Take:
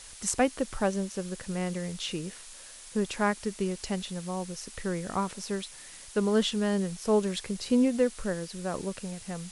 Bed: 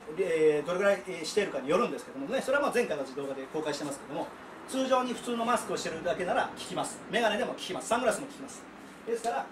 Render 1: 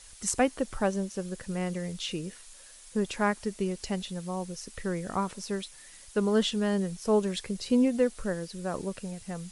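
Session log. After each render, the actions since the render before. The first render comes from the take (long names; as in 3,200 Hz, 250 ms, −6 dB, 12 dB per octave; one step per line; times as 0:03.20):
broadband denoise 6 dB, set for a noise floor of −48 dBFS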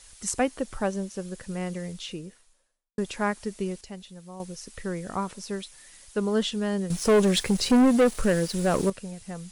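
0:01.80–0:02.98: fade out and dull
0:03.81–0:04.40: clip gain −8.5 dB
0:06.90–0:08.90: leveller curve on the samples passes 3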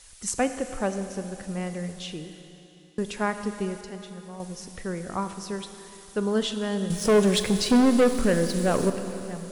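four-comb reverb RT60 3.4 s, combs from 26 ms, DRR 8.5 dB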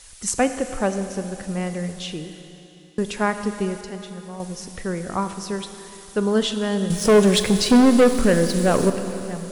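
level +5 dB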